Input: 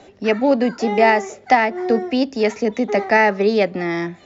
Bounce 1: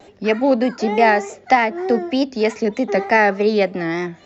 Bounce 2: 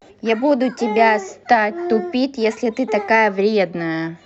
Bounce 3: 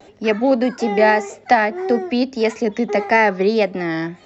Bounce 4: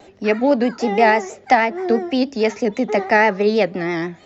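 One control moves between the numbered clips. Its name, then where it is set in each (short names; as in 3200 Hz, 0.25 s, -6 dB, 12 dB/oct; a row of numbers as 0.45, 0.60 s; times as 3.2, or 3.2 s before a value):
vibrato, rate: 3.3, 0.45, 1.7, 6.2 Hz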